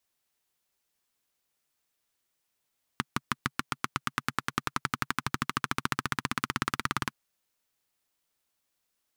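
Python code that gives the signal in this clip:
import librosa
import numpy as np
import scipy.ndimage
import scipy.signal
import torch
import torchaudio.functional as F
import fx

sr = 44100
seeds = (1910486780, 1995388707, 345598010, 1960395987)

y = fx.engine_single_rev(sr, seeds[0], length_s=4.12, rpm=700, resonances_hz=(140.0, 230.0, 1200.0), end_rpm=2200)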